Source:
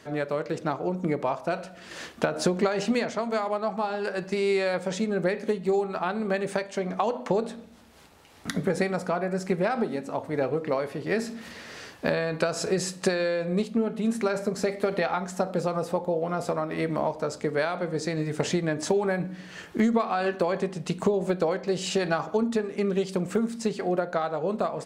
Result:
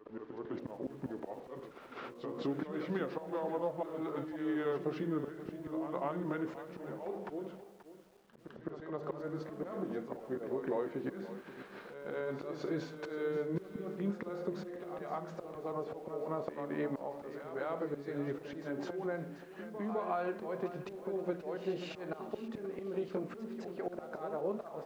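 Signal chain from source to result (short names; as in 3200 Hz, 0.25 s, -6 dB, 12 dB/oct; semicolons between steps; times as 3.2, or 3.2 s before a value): gliding pitch shift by -5 st ending unshifted; HPF 260 Hz 12 dB/oct; expander -38 dBFS; auto swell 0.37 s; compressor 2:1, threshold -38 dBFS, peak gain reduction 8.5 dB; requantised 10-bit, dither none; tape spacing loss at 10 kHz 40 dB; reverse echo 0.208 s -10 dB; lo-fi delay 0.531 s, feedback 35%, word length 10-bit, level -13 dB; gain +3.5 dB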